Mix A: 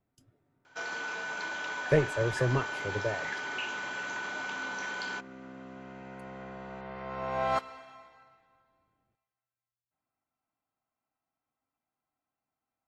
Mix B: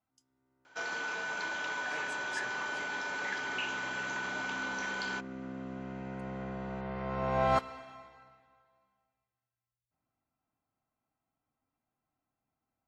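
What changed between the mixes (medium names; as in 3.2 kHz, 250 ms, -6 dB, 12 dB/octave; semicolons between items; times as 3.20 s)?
speech: add band-pass filter 6 kHz, Q 1.6; second sound: add bass shelf 320 Hz +9 dB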